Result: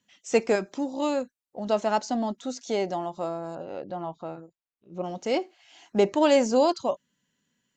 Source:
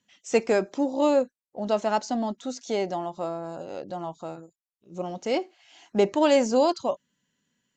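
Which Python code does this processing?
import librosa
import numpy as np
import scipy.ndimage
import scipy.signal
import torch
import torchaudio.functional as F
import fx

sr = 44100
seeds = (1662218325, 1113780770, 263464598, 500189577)

y = fx.dynamic_eq(x, sr, hz=510.0, q=0.77, threshold_db=-35.0, ratio=4.0, max_db=-7, at=(0.55, 1.7))
y = fx.lowpass(y, sr, hz=3100.0, slope=12, at=(3.55, 5.04))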